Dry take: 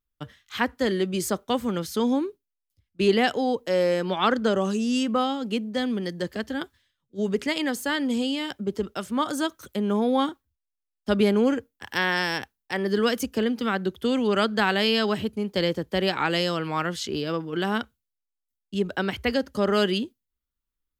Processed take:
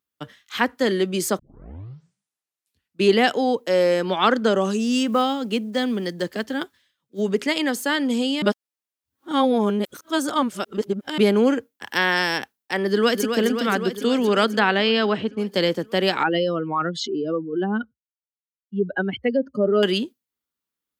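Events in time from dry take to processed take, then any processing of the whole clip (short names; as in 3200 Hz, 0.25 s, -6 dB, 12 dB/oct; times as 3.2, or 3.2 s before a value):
1.39 tape start 1.63 s
4.8–7.23 block floating point 7-bit
8.42–11.18 reverse
12.88–13.28 echo throw 0.26 s, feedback 75%, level -6.5 dB
14.59–15.38 LPF 3400 Hz
16.23–19.83 spectral contrast raised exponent 2.2
whole clip: HPF 180 Hz 12 dB/oct; gain +4 dB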